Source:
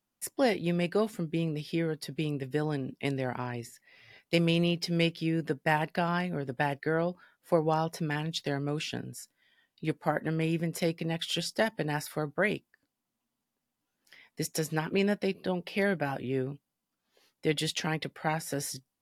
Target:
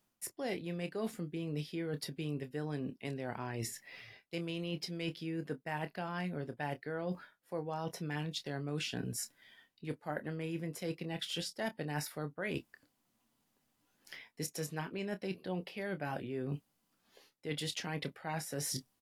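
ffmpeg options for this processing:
ffmpeg -i in.wav -filter_complex "[0:a]areverse,acompressor=threshold=-42dB:ratio=10,areverse,asplit=2[link_01][link_02];[link_02]adelay=27,volume=-11dB[link_03];[link_01][link_03]amix=inputs=2:normalize=0,volume=6.5dB" out.wav

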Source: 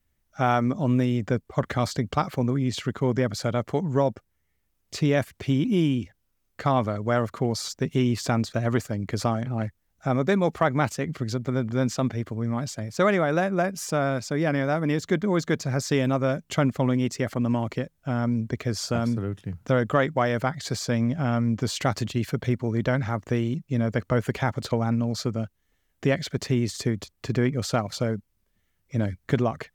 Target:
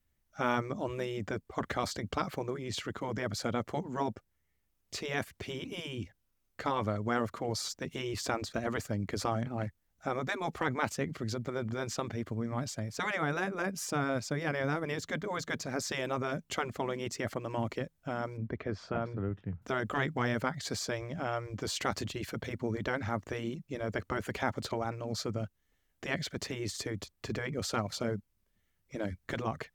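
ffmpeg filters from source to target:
ffmpeg -i in.wav -filter_complex "[0:a]asettb=1/sr,asplit=3[link_01][link_02][link_03];[link_01]atrim=end=18.374[link_04];[link_02]atrim=start=18.37:end=19.62,asetpts=PTS-STARTPTS,afade=type=in:duration=0.004:curve=qsin,afade=type=out:start_time=1.246:duration=0.004:curve=qsin,lowpass=2100[link_05];[link_03]atrim=start=19.616[link_06];[link_04][link_05]acrossfade=duration=0.004:curve1=hsin:curve2=qsin[link_07];[link_07][link_06]acrossfade=duration=0.004:curve1=qsin:curve2=hsin,afftfilt=real='re*lt(hypot(re,im),0.398)':imag='im*lt(hypot(re,im),0.398)':win_size=1024:overlap=0.75,volume=-4.5dB" out.wav

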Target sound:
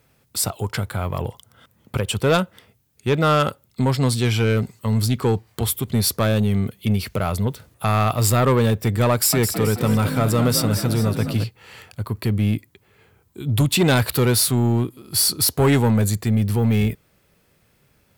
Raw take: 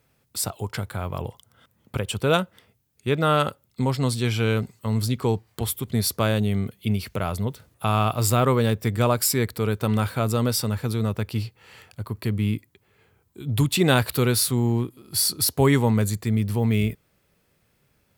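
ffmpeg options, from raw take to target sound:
ffmpeg -i in.wav -filter_complex "[0:a]asoftclip=type=tanh:threshold=-16dB,asettb=1/sr,asplit=3[link_01][link_02][link_03];[link_01]atrim=end=9.114[link_04];[link_02]atrim=start=9.11:end=11.44,asetpts=PTS-STARTPTS,afade=type=in:duration=0.004:curve=qsin,afade=type=out:start_time=2.326:duration=0.004:curve=qsin,asplit=6[link_05][link_06][link_07][link_08][link_09][link_10];[link_06]adelay=215,afreqshift=43,volume=-8dB[link_11];[link_07]adelay=430,afreqshift=86,volume=-14.7dB[link_12];[link_08]adelay=645,afreqshift=129,volume=-21.5dB[link_13];[link_09]adelay=860,afreqshift=172,volume=-28.2dB[link_14];[link_10]adelay=1075,afreqshift=215,volume=-35dB[link_15];[link_05][link_11][link_12][link_13][link_14][link_15]amix=inputs=6:normalize=0,atrim=end_sample=102753[link_16];[link_03]atrim=start=11.436[link_17];[link_04][link_16]acrossfade=duration=0.004:curve1=hsin:curve2=qsin[link_18];[link_18][link_17]acrossfade=duration=0.004:curve1=qsin:curve2=hsin,volume=5.5dB" out.wav

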